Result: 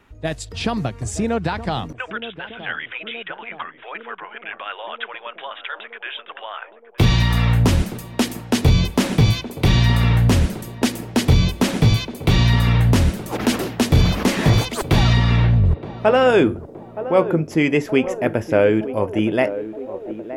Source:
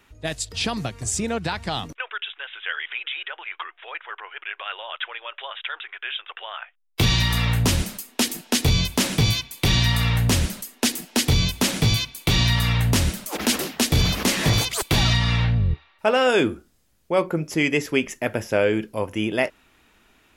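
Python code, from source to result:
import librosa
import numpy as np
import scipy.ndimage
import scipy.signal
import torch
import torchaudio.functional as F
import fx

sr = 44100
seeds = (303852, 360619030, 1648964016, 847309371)

p1 = fx.high_shelf(x, sr, hz=2300.0, db=-12.0)
p2 = p1 + fx.echo_banded(p1, sr, ms=920, feedback_pct=75, hz=450.0, wet_db=-11.5, dry=0)
y = F.gain(torch.from_numpy(p2), 5.5).numpy()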